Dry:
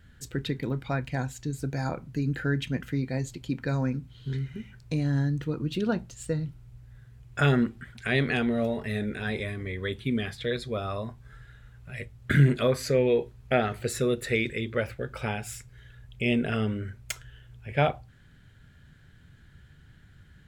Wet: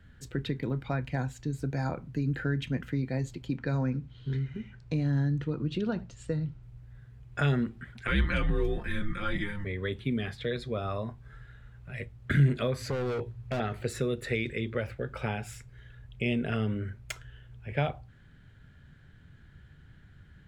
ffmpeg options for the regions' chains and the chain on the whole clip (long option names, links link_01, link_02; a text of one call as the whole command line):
ffmpeg -i in.wav -filter_complex "[0:a]asettb=1/sr,asplit=3[link_01][link_02][link_03];[link_01]atrim=end=3.564[link_04];[link_02]atrim=start=3.56:end=6.63,asetpts=PTS-STARTPTS,afade=type=in:duration=0.004:curve=qsin,afade=type=out:start_time=3.066:duration=0.004:curve=qsin,lowpass=7500,aecho=1:1:77:0.0668,atrim=end_sample=135387[link_05];[link_03]atrim=start=6.626[link_06];[link_04][link_05]acrossfade=duration=0.004:curve1=hsin:curve2=qsin[link_07];[link_07][link_06]acrossfade=duration=0.004:curve1=qsin:curve2=hsin,asettb=1/sr,asplit=3[link_08][link_09][link_10];[link_08]atrim=end=8.074[link_11];[link_09]atrim=start=8.07:end=9.65,asetpts=PTS-STARTPTS,afade=type=in:duration=0.004:curve=qsin,afade=type=out:start_time=1.576:duration=0.004:curve=qsin,aecho=1:1:5.6:0.84,atrim=end_sample=69678,afreqshift=-200[link_12];[link_10]atrim=start=9.646[link_13];[link_11][link_12]acrossfade=duration=0.004:curve1=hsin:curve2=qsin[link_14];[link_14][link_13]acrossfade=duration=0.004:curve1=qsin:curve2=hsin,asettb=1/sr,asplit=3[link_15][link_16][link_17];[link_15]atrim=end=12.804[link_18];[link_16]atrim=start=12.8:end=13.6,asetpts=PTS-STARTPTS,afade=type=in:duration=0.004:curve=qsin,afade=type=out:start_time=0.796:duration=0.004:curve=qsin,asoftclip=type=hard:threshold=-28dB,equalizer=frequency=110:width_type=o:width=0.28:gain=15[link_19];[link_17]atrim=start=13.596[link_20];[link_18][link_19]acrossfade=duration=0.004:curve1=hsin:curve2=qsin[link_21];[link_21][link_20]acrossfade=duration=0.004:curve1=qsin:curve2=hsin,highshelf=frequency=4600:gain=-10.5,acrossover=split=140|3000[link_22][link_23][link_24];[link_23]acompressor=threshold=-29dB:ratio=3[link_25];[link_22][link_25][link_24]amix=inputs=3:normalize=0" out.wav